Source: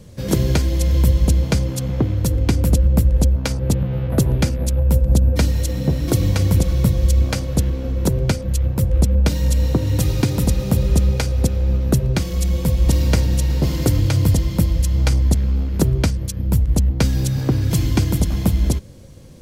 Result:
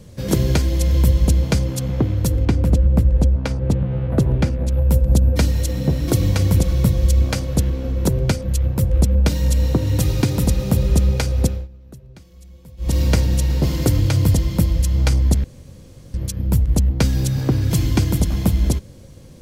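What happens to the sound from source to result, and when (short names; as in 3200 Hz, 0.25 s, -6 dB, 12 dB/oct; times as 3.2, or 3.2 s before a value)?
2.45–4.72 LPF 2200 Hz 6 dB/oct
11.46–12.99 dip -24 dB, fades 0.22 s
15.44–16.14 room tone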